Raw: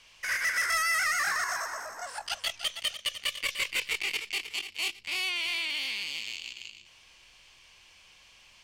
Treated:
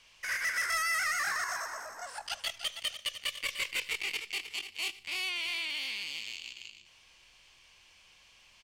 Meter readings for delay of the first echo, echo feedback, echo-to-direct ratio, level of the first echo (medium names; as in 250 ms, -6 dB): 76 ms, 42%, -20.5 dB, -21.5 dB